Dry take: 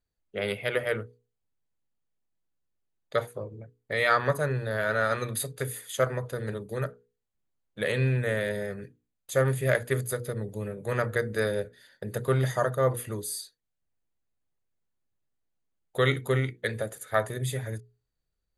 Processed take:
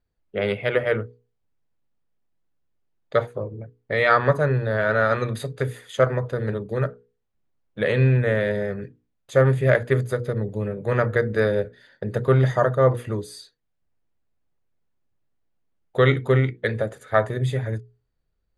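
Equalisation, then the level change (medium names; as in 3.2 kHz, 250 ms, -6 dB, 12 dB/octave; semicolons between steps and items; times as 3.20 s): tape spacing loss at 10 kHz 20 dB; +8.0 dB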